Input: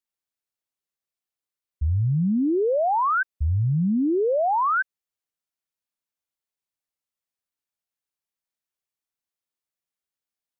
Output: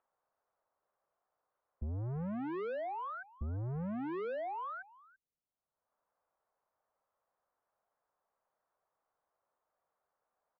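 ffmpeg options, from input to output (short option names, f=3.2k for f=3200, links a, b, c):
-filter_complex "[0:a]lowpass=f=1.1k:w=0.5412,lowpass=f=1.1k:w=1.3066,acrossover=split=110|220|760[a][b][c][d];[d]acompressor=mode=upward:threshold=-50dB:ratio=2.5[e];[a][b][c][e]amix=inputs=4:normalize=0,firequalizer=gain_entry='entry(120,0);entry(500,-5);entry(860,-16)':delay=0.05:min_phase=1,asoftclip=type=tanh:threshold=-32dB,equalizer=f=340:t=o:w=0.77:g=-3,acompressor=threshold=-43dB:ratio=4,asplit=2[f][g];[g]adelay=338.2,volume=-20dB,highshelf=f=4k:g=-7.61[h];[f][h]amix=inputs=2:normalize=0,volume=4dB"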